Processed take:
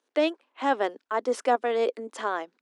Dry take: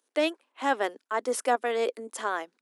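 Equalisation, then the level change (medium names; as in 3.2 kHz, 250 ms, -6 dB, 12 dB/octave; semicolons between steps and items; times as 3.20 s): dynamic bell 1.9 kHz, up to -4 dB, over -38 dBFS, Q 1; distance through air 97 m; +3.0 dB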